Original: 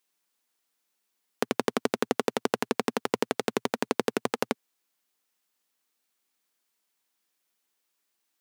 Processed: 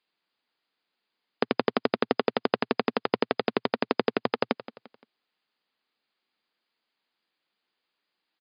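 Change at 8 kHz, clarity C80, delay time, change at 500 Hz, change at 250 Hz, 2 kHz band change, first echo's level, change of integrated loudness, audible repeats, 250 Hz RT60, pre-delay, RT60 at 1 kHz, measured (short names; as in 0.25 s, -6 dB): under -40 dB, none, 0.173 s, +2.0 dB, +1.5 dB, +2.0 dB, -15.5 dB, +1.5 dB, 3, none, none, none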